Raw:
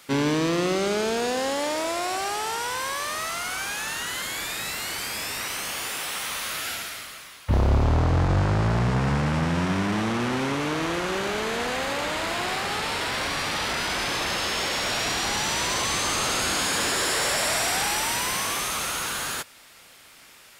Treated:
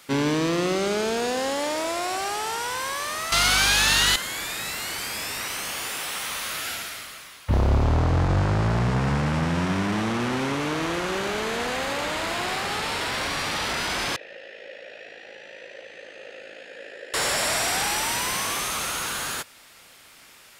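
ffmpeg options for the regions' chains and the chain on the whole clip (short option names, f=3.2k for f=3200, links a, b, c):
-filter_complex "[0:a]asettb=1/sr,asplit=3[a][b][c];[a]atrim=end=3.324[d];[b]atrim=start=3.32:end=4.16,asetpts=PTS-STARTPTS,afade=t=in:d=0.004:c=qsin,afade=t=out:st=0.836:d=0.004:c=qsin,equalizer=f=4k:w=1.2:g=9,acontrast=88,aeval=exprs='val(0)+0.0251*(sin(2*PI*50*n/s)+sin(2*PI*2*50*n/s)/2+sin(2*PI*3*50*n/s)/3+sin(2*PI*4*50*n/s)/4+sin(2*PI*5*50*n/s)/5)':c=same[e];[c]atrim=start=4.156[f];[d][e]acrossfade=d=0.004:c1=hsin:c2=qsin[g];[g][f]acrossfade=d=0.004:c1=qsin:c2=hsin,asettb=1/sr,asplit=3[h][i][j];[h]atrim=end=14.164[k];[i]atrim=start=14.16:end=17.14,asetpts=PTS-STARTPTS,afade=t=in:d=0.004:c=qsin,afade=t=out:st=2.976:d=0.004:c=qsin,asplit=3[l][m][n];[l]bandpass=f=530:t=q:w=8,volume=0dB[o];[m]bandpass=f=1.84k:t=q:w=8,volume=-6dB[p];[n]bandpass=f=2.48k:t=q:w=8,volume=-9dB[q];[o][p][q]amix=inputs=3:normalize=0,highshelf=f=4.9k:g=-7,tremolo=f=54:d=0.571[r];[j]atrim=start=17.136[s];[k][r]acrossfade=d=0.004:c1=hsin:c2=qsin[t];[t][s]acrossfade=d=0.004:c1=qsin:c2=hsin"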